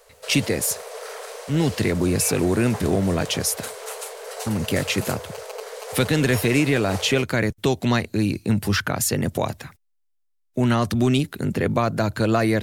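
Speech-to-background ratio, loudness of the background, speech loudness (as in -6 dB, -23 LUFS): 12.0 dB, -34.5 LUFS, -22.5 LUFS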